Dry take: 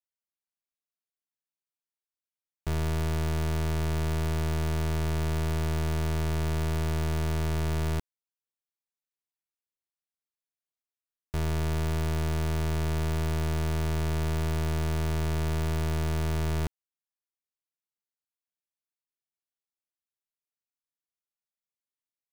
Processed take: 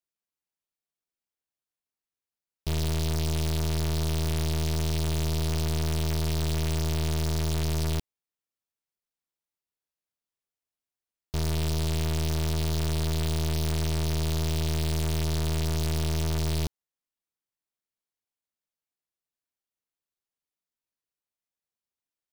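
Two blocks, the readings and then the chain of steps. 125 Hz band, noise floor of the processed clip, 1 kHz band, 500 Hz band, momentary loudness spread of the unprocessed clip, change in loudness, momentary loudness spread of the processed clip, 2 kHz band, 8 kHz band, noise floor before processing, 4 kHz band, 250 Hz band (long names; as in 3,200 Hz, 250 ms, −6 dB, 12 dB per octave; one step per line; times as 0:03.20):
+1.0 dB, below −85 dBFS, −2.0 dB, 0.0 dB, 1 LU, +1.5 dB, 1 LU, −1.5 dB, +7.0 dB, below −85 dBFS, +7.0 dB, +1.0 dB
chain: short delay modulated by noise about 3,700 Hz, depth 0.16 ms
level +1 dB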